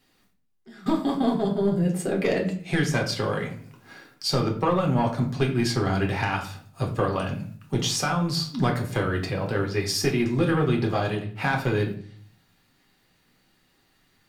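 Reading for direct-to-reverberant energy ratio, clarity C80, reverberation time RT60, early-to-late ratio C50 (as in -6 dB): 0.5 dB, 13.0 dB, 0.45 s, 9.0 dB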